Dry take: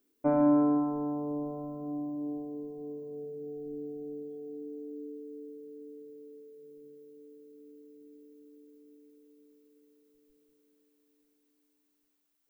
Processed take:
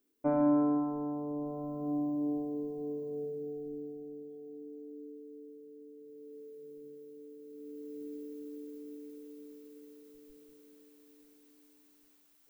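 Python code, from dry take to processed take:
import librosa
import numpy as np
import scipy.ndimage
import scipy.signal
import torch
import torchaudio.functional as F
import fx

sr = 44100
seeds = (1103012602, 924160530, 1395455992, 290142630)

y = fx.gain(x, sr, db=fx.line((1.33, -3.0), (1.92, 3.0), (3.25, 3.0), (4.09, -5.0), (5.95, -5.0), (6.44, 2.5), (7.37, 2.5), (7.99, 11.0)))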